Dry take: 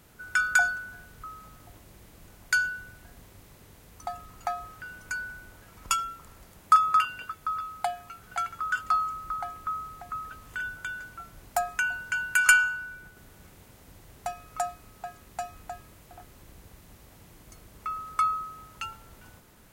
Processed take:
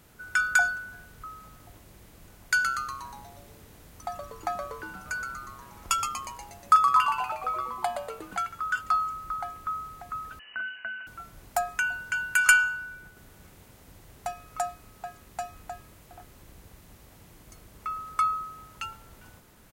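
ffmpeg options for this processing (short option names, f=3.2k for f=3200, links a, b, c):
-filter_complex "[0:a]asplit=3[a][b][c];[a]afade=t=out:st=2.57:d=0.02[d];[b]asplit=9[e][f][g][h][i][j][k][l][m];[f]adelay=120,afreqshift=-130,volume=-6.5dB[n];[g]adelay=240,afreqshift=-260,volume=-10.9dB[o];[h]adelay=360,afreqshift=-390,volume=-15.4dB[p];[i]adelay=480,afreqshift=-520,volume=-19.8dB[q];[j]adelay=600,afreqshift=-650,volume=-24.2dB[r];[k]adelay=720,afreqshift=-780,volume=-28.7dB[s];[l]adelay=840,afreqshift=-910,volume=-33.1dB[t];[m]adelay=960,afreqshift=-1040,volume=-37.6dB[u];[e][n][o][p][q][r][s][t][u]amix=inputs=9:normalize=0,afade=t=in:st=2.57:d=0.02,afade=t=out:st=8.36:d=0.02[v];[c]afade=t=in:st=8.36:d=0.02[w];[d][v][w]amix=inputs=3:normalize=0,asettb=1/sr,asplit=3[x][y][z];[x]atrim=end=10.394[aa];[y]atrim=start=10.39:end=11.07,asetpts=PTS-STARTPTS,afade=t=in:d=0.004:c=qsin,afade=t=out:st=0.676:d=0.004:c=qsin,lowpass=f=2.6k:t=q:w=0.5098,lowpass=f=2.6k:t=q:w=0.6013,lowpass=f=2.6k:t=q:w=0.9,lowpass=f=2.6k:t=q:w=2.563,afreqshift=-3000[ab];[z]atrim=start=11.066[ac];[aa][ab]acrossfade=d=0.004:c1=hsin:c2=qsin[ad];[ad][ac]acrossfade=d=0.004:c1=qsin:c2=hsin"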